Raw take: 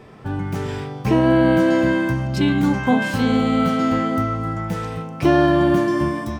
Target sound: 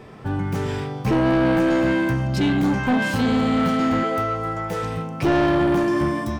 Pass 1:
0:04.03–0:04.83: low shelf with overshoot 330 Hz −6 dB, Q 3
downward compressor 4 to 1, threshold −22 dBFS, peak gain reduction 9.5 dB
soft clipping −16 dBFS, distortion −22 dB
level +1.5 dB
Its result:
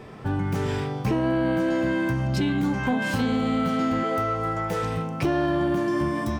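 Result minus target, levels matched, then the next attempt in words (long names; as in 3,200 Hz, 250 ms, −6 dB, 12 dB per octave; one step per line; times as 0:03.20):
downward compressor: peak gain reduction +9.5 dB
0:04.03–0:04.83: low shelf with overshoot 330 Hz −6 dB, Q 3
soft clipping −16 dBFS, distortion −12 dB
level +1.5 dB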